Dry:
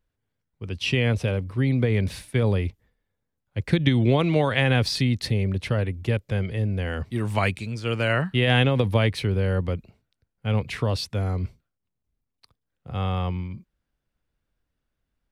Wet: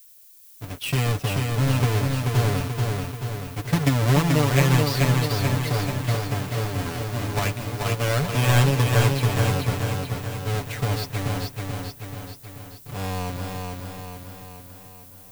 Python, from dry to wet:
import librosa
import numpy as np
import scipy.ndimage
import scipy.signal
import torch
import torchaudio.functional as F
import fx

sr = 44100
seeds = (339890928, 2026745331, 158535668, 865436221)

p1 = fx.halfwave_hold(x, sr)
p2 = p1 + 0.66 * np.pad(p1, (int(6.9 * sr / 1000.0), 0))[:len(p1)]
p3 = fx.dmg_noise_colour(p2, sr, seeds[0], colour='violet', level_db=-43.0)
p4 = p3 + fx.echo_feedback(p3, sr, ms=434, feedback_pct=56, wet_db=-3.5, dry=0)
y = p4 * librosa.db_to_amplitude(-7.5)